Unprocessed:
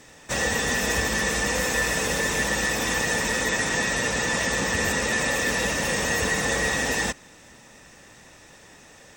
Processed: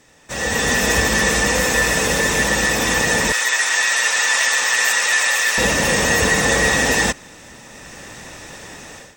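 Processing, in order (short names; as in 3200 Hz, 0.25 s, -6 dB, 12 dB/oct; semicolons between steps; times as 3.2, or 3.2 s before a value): 3.32–5.58 HPF 1100 Hz 12 dB/oct; AGC gain up to 16.5 dB; gain -3.5 dB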